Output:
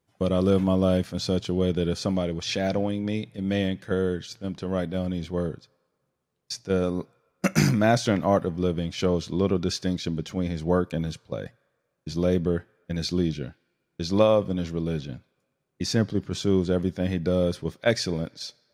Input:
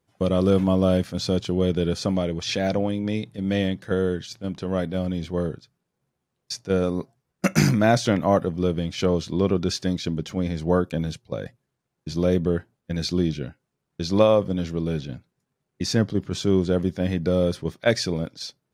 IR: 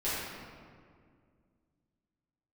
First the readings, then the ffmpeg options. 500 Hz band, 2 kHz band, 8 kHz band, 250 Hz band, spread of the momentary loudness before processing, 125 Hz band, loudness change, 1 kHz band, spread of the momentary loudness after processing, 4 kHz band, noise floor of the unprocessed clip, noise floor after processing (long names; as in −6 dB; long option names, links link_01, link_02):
−2.0 dB, −2.0 dB, −2.0 dB, −2.0 dB, 12 LU, −2.0 dB, −2.0 dB, −2.0 dB, 12 LU, −2.0 dB, −80 dBFS, −77 dBFS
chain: -filter_complex "[0:a]asplit=2[link_01][link_02];[link_02]highpass=1100[link_03];[1:a]atrim=start_sample=2205[link_04];[link_03][link_04]afir=irnorm=-1:irlink=0,volume=-29dB[link_05];[link_01][link_05]amix=inputs=2:normalize=0,volume=-2dB"